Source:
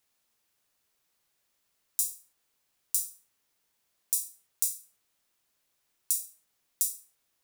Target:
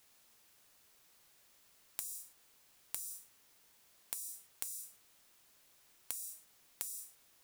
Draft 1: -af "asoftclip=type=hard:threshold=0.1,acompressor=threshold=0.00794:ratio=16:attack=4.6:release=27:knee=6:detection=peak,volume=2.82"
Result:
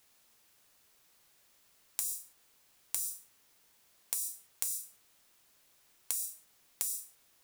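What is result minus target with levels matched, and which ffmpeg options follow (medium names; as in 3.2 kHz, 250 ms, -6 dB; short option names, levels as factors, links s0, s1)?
compression: peak gain reduction -9 dB
-af "asoftclip=type=hard:threshold=0.1,acompressor=threshold=0.00266:ratio=16:attack=4.6:release=27:knee=6:detection=peak,volume=2.82"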